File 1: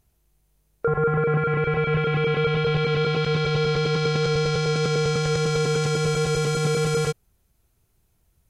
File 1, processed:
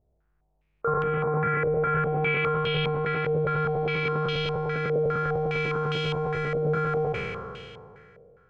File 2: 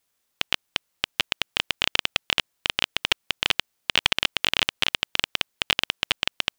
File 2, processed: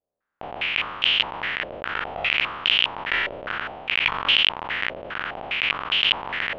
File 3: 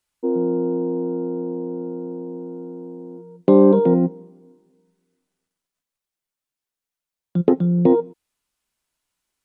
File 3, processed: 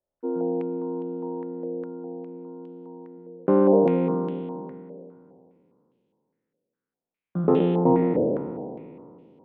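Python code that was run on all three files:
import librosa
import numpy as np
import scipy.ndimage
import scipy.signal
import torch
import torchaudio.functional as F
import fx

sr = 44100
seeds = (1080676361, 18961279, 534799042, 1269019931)

y = fx.spec_trails(x, sr, decay_s=2.43)
y = fx.filter_held_lowpass(y, sr, hz=4.9, low_hz=590.0, high_hz=3000.0)
y = y * 10.0 ** (-8.0 / 20.0)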